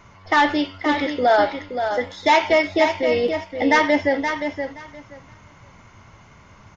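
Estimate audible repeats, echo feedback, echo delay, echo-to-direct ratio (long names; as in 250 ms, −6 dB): 2, 17%, 523 ms, −7.5 dB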